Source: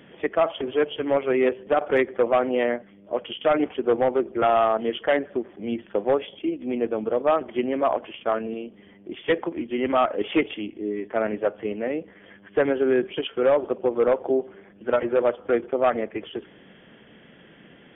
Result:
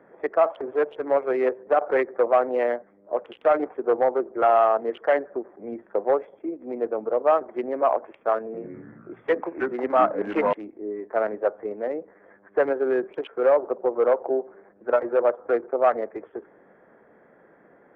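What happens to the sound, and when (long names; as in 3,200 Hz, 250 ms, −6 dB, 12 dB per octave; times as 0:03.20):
0:08.44–0:10.53: delay with pitch and tempo change per echo 98 ms, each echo −4 semitones, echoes 3
whole clip: adaptive Wiener filter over 15 samples; three-way crossover with the lows and the highs turned down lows −16 dB, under 400 Hz, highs −21 dB, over 2,000 Hz; level +3 dB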